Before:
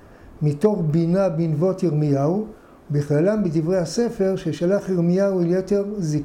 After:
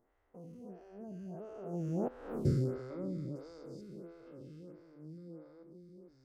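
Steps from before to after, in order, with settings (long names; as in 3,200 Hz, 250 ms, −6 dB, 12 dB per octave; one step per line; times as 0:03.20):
spectrum averaged block by block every 400 ms
source passing by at 0:02.36, 46 m/s, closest 3.4 metres
phaser with staggered stages 1.5 Hz
level +4.5 dB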